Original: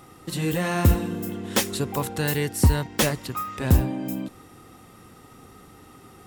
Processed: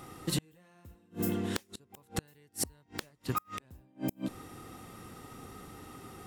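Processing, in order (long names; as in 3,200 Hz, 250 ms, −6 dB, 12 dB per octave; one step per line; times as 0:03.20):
gate with flip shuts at −19 dBFS, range −36 dB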